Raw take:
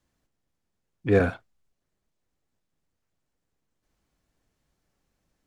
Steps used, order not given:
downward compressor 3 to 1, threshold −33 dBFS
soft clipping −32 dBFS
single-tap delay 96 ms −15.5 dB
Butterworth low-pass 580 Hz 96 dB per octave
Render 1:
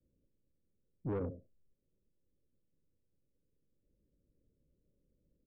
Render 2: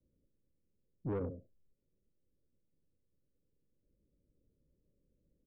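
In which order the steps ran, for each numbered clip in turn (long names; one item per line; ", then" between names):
Butterworth low-pass, then downward compressor, then single-tap delay, then soft clipping
single-tap delay, then downward compressor, then Butterworth low-pass, then soft clipping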